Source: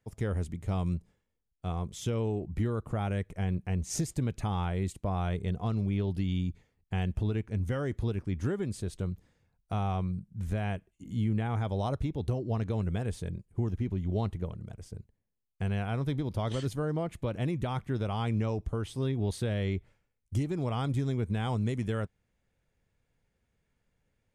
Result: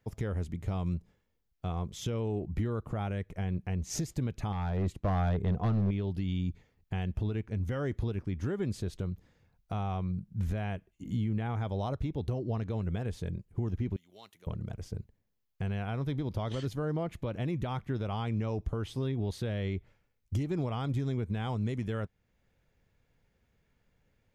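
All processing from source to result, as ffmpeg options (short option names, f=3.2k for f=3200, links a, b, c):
-filter_complex "[0:a]asettb=1/sr,asplit=3[a][b][c];[a]atrim=end=4.524[d];[b]atrim=start=4.52:end=5.91,asetpts=PTS-STARTPTS,afade=t=in:d=0.004:c=qsin,afade=t=out:st=1.386:d=0.004:c=qsin,highshelf=f=2.9k:g=-10,asoftclip=type=hard:threshold=-28dB[e];[c]atrim=start=5.906[f];[d][e]acrossfade=d=0.004:c1=hsin:c2=qsin[g];[g][f]acrossfade=d=0.004:c1=qsin:c2=hsin,asettb=1/sr,asplit=3[h][i][j];[h]atrim=end=13.964[k];[i]atrim=start=13.96:end=14.47,asetpts=PTS-STARTPTS,afade=t=in:d=0.004:c=qsin,afade=t=out:st=0.506:d=0.004:c=qsin,highpass=120,aderivative[l];[j]atrim=start=14.466[m];[k][l]acrossfade=d=0.004:c1=hsin:c2=qsin[n];[n][m]acrossfade=d=0.004:c1=qsin:c2=hsin,equalizer=f=8.9k:t=o:w=0.53:g=-9.5,alimiter=level_in=3.5dB:limit=-24dB:level=0:latency=1:release=421,volume=-3.5dB,volume=4.5dB"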